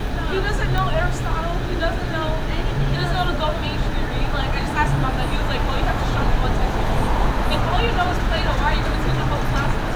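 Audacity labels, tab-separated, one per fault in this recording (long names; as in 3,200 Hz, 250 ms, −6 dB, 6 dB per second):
0.780000	0.780000	click −11 dBFS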